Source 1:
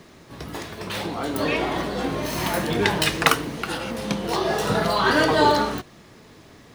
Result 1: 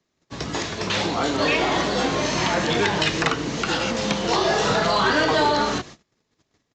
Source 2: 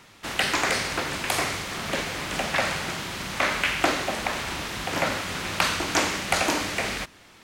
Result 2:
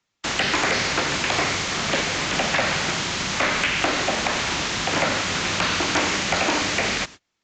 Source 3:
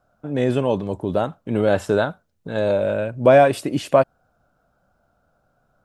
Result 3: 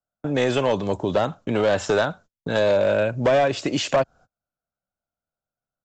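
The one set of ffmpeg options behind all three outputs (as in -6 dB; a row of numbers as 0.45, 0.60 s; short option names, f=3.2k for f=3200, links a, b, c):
-filter_complex "[0:a]agate=range=-33dB:threshold=-43dB:ratio=16:detection=peak,acrossover=split=4100[a][b];[b]acompressor=threshold=-39dB:ratio=4:attack=1:release=60[c];[a][c]amix=inputs=2:normalize=0,aemphasis=mode=production:type=50fm,acrossover=split=89|490[d][e][f];[d]acompressor=threshold=-49dB:ratio=4[g];[e]acompressor=threshold=-31dB:ratio=4[h];[f]acompressor=threshold=-24dB:ratio=4[i];[g][h][i]amix=inputs=3:normalize=0,aresample=16000,asoftclip=type=hard:threshold=-19.5dB,aresample=44100,volume=6dB"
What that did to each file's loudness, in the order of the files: +1.0, +4.0, -2.0 LU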